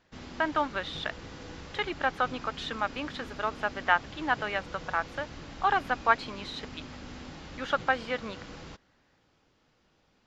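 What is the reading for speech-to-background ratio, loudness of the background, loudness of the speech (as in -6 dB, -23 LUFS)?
13.5 dB, -44.5 LUFS, -31.0 LUFS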